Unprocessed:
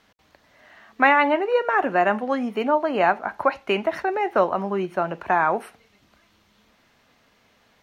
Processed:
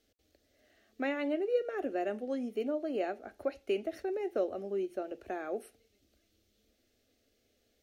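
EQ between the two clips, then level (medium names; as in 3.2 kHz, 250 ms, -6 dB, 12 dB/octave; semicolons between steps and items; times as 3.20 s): peaking EQ 1.8 kHz -12 dB 2.5 oct; static phaser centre 400 Hz, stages 4; -5.0 dB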